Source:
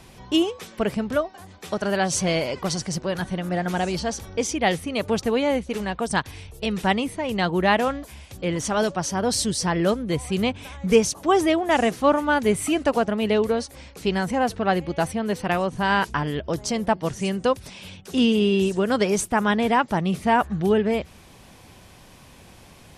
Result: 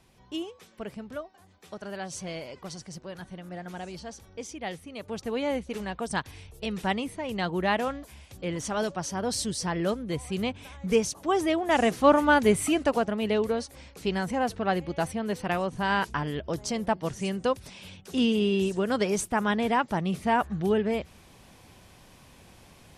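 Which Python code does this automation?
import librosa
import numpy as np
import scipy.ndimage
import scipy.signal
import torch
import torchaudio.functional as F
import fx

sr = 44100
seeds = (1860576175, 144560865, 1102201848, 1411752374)

y = fx.gain(x, sr, db=fx.line((5.03, -14.0), (5.45, -6.5), (11.39, -6.5), (12.24, 1.0), (13.1, -5.0)))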